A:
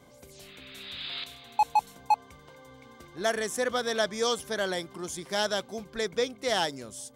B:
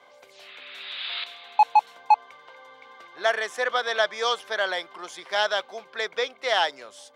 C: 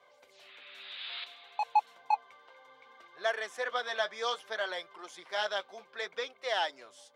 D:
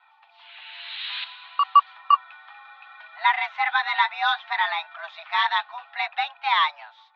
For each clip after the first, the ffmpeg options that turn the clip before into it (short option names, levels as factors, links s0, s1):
-filter_complex "[0:a]highpass=f=230:p=1,acrossover=split=530 4200:gain=0.0708 1 0.1[s0][s1][s2];[s0][s1][s2]amix=inputs=3:normalize=0,volume=2.37"
-af "flanger=delay=1.7:depth=8.6:regen=-38:speed=0.62:shape=sinusoidal,volume=0.562"
-af "highpass=f=350:t=q:w=0.5412,highpass=f=350:t=q:w=1.307,lowpass=f=3500:t=q:w=0.5176,lowpass=f=3500:t=q:w=0.7071,lowpass=f=3500:t=q:w=1.932,afreqshift=300,dynaudnorm=f=190:g=5:m=2.24,aeval=exprs='0.355*(cos(1*acos(clip(val(0)/0.355,-1,1)))-cos(1*PI/2))+0.002*(cos(2*acos(clip(val(0)/0.355,-1,1)))-cos(2*PI/2))':c=same,volume=1.58"